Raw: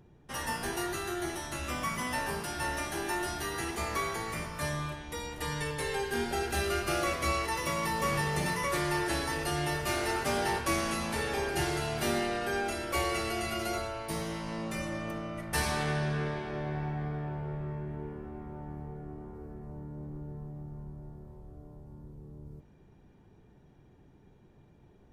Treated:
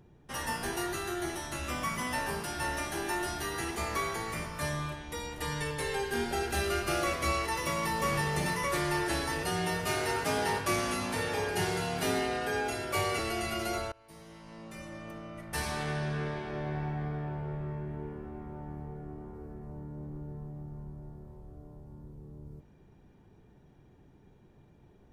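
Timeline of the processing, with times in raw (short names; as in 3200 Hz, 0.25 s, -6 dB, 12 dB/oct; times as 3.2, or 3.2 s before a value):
9.43–13.19 frequency shift +27 Hz
13.92–16.72 fade in, from -23.5 dB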